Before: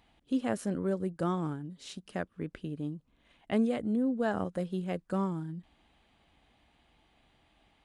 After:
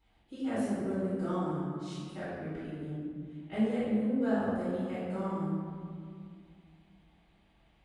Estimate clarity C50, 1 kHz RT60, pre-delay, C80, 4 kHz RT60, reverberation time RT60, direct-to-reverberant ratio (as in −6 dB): −3.0 dB, 2.1 s, 3 ms, −0.5 dB, 1.3 s, 2.2 s, −14.0 dB